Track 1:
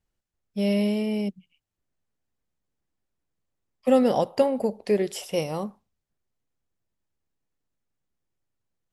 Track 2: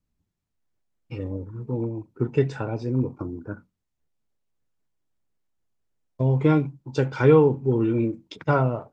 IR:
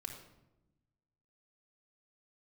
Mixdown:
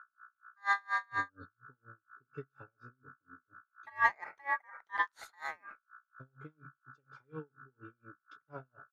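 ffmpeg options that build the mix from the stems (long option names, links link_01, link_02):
-filter_complex "[0:a]lowpass=frequency=2600:poles=1,aeval=exprs='val(0)+0.00398*(sin(2*PI*60*n/s)+sin(2*PI*2*60*n/s)/2+sin(2*PI*3*60*n/s)/3+sin(2*PI*4*60*n/s)/4+sin(2*PI*5*60*n/s)/5)':channel_layout=same,aeval=exprs='val(0)*sin(2*PI*1400*n/s)':channel_layout=same,volume=0dB,asplit=2[link_01][link_02];[1:a]aecho=1:1:7.1:0.64,volume=-16dB[link_03];[link_02]apad=whole_len=393844[link_04];[link_03][link_04]sidechaingate=range=-10dB:threshold=-48dB:ratio=16:detection=peak[link_05];[link_01][link_05]amix=inputs=2:normalize=0,aeval=exprs='val(0)*pow(10,-37*(0.5-0.5*cos(2*PI*4.2*n/s))/20)':channel_layout=same"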